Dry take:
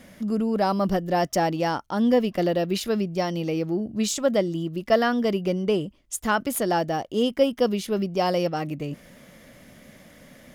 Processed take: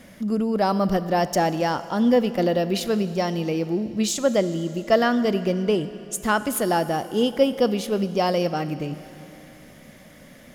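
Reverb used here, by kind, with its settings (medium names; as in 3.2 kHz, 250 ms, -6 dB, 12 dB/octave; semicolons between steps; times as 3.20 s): Schroeder reverb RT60 3.1 s, combs from 26 ms, DRR 13 dB; trim +1.5 dB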